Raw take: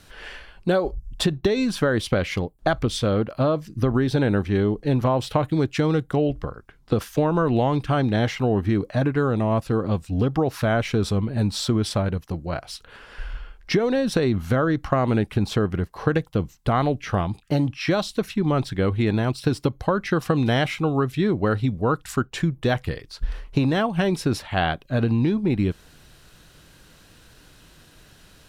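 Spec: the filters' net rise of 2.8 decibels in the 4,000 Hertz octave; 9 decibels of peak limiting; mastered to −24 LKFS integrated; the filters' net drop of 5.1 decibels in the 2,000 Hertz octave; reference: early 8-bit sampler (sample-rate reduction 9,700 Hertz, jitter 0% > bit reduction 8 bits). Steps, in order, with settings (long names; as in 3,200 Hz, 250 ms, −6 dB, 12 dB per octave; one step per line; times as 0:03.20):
parametric band 2,000 Hz −8.5 dB
parametric band 4,000 Hz +6 dB
brickwall limiter −15.5 dBFS
sample-rate reduction 9,700 Hz, jitter 0%
bit reduction 8 bits
level +2 dB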